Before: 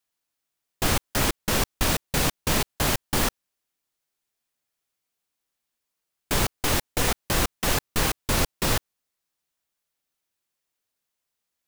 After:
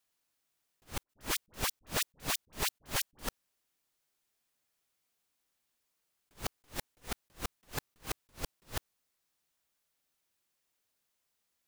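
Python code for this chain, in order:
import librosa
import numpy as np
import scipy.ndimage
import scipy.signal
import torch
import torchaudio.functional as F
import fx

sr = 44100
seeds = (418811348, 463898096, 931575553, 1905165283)

y = fx.level_steps(x, sr, step_db=18)
y = fx.dispersion(y, sr, late='highs', ms=60.0, hz=1100.0, at=(1.03, 3.27))
y = fx.attack_slew(y, sr, db_per_s=290.0)
y = y * 10.0 ** (8.5 / 20.0)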